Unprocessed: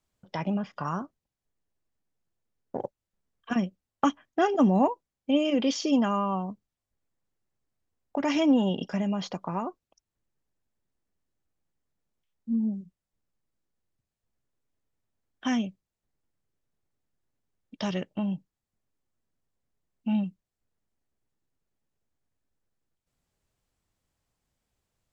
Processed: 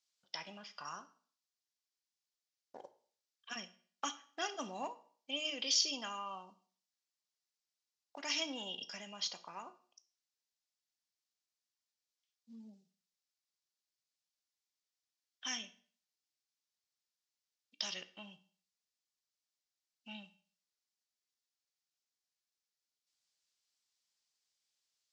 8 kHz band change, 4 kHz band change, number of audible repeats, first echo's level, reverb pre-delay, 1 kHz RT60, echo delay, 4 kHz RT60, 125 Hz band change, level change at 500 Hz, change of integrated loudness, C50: n/a, +1.0 dB, none, none, 17 ms, 0.45 s, none, 0.45 s, under -25 dB, -19.5 dB, -11.5 dB, 15.5 dB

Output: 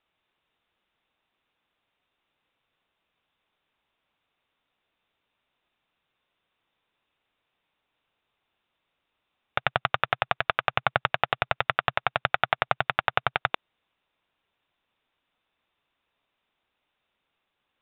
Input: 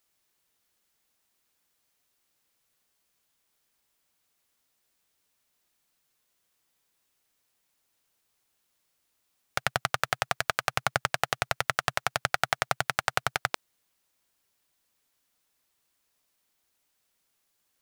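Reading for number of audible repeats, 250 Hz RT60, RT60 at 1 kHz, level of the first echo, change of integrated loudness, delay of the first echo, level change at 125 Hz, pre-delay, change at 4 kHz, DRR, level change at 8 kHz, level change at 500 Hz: none, none, none, none, +2.5 dB, none, +1.5 dB, none, +0.5 dB, none, under -40 dB, +3.5 dB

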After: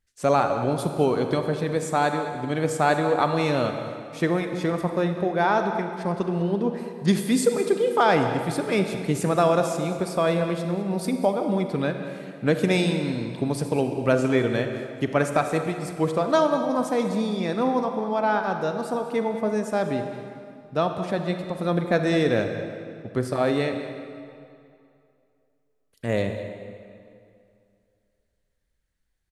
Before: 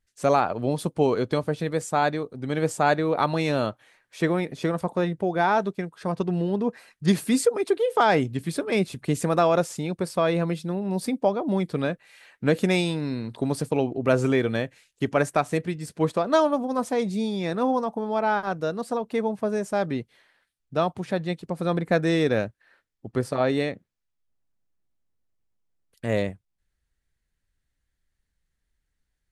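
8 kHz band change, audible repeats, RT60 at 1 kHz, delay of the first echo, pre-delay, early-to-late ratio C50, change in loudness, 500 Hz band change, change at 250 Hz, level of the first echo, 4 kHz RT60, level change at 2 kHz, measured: +0.5 dB, 1, 2.5 s, 0.202 s, 35 ms, 6.0 dB, +1.0 dB, +1.0 dB, +1.0 dB, -15.0 dB, 1.9 s, +1.0 dB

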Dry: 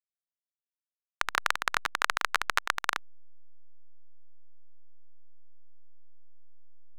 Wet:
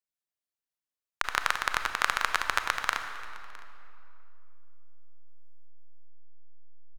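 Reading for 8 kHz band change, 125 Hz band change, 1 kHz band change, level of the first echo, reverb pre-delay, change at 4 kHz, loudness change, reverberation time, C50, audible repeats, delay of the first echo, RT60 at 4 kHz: +0.5 dB, +1.5 dB, +1.0 dB, -22.5 dB, 27 ms, +0.5 dB, +0.5 dB, 2.7 s, 7.5 dB, 1, 0.66 s, 1.9 s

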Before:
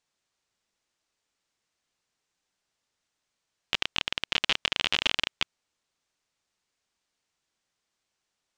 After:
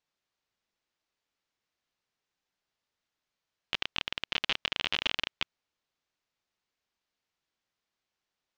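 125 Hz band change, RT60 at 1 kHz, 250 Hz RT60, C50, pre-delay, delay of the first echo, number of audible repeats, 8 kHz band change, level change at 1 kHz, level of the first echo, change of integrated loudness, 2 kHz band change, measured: -4.0 dB, none, none, none, none, none, none, -9.5 dB, -4.0 dB, none, -4.5 dB, -4.0 dB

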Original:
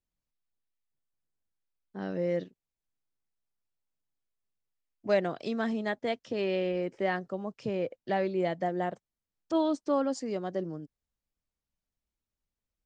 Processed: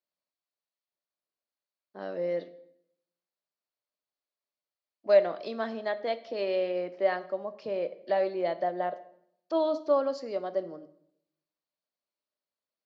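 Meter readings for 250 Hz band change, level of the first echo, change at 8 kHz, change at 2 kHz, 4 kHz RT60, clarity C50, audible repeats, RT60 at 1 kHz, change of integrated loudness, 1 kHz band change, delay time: -6.0 dB, none, n/a, -2.0 dB, 0.60 s, 15.5 dB, none, 0.70 s, +1.5 dB, +1.0 dB, none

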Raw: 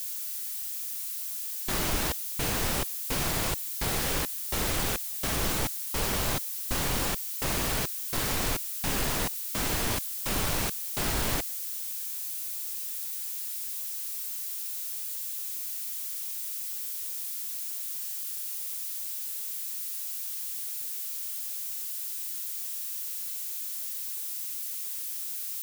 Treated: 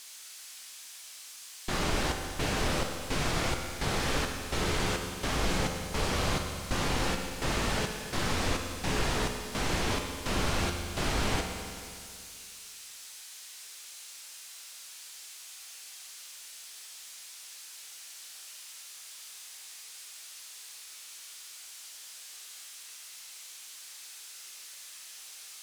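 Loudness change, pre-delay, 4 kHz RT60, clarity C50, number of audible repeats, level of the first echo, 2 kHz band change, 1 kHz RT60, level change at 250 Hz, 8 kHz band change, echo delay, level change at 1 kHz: -4.5 dB, 12 ms, 2.2 s, 4.5 dB, none, none, +1.0 dB, 2.3 s, +1.5 dB, -6.0 dB, none, +1.5 dB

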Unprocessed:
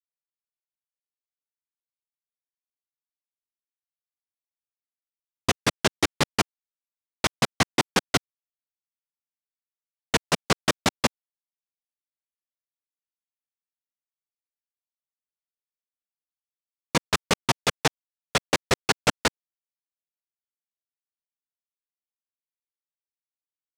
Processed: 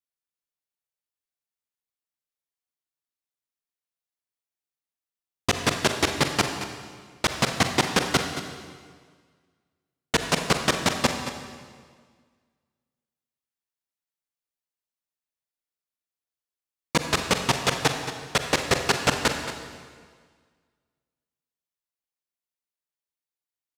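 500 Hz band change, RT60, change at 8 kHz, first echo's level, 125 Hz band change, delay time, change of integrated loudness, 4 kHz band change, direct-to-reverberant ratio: +1.5 dB, 1.7 s, +1.0 dB, -12.0 dB, +1.5 dB, 0.225 s, +0.5 dB, +1.0 dB, 5.0 dB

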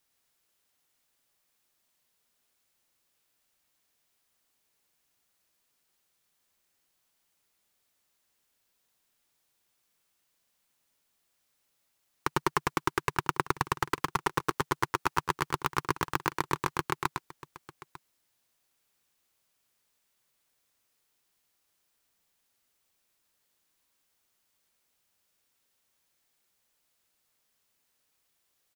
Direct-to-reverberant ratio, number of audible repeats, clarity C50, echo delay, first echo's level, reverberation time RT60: none, 2, none, 0.106 s, -5.0 dB, none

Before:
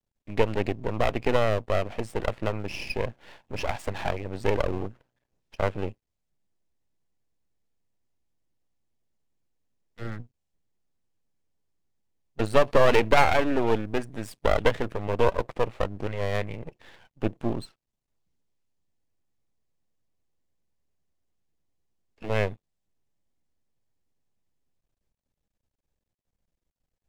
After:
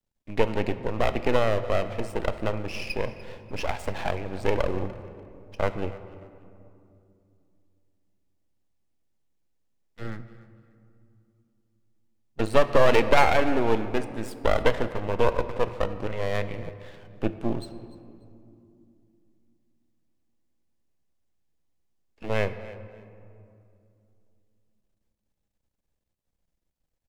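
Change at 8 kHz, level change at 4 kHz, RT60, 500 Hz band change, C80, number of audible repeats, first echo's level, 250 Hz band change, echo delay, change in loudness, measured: 0.0 dB, +0.5 dB, 2.6 s, +0.5 dB, 12.5 dB, 2, -19.5 dB, +1.0 dB, 0.294 s, 0.0 dB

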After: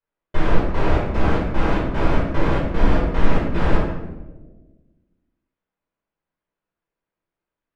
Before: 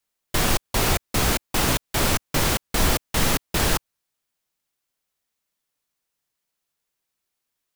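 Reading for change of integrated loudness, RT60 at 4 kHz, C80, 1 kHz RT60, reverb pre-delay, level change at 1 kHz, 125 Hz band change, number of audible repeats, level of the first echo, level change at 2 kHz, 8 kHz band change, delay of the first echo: 0.0 dB, 0.70 s, 5.0 dB, 0.95 s, 5 ms, +1.5 dB, +4.5 dB, none, none, -2.0 dB, under -25 dB, none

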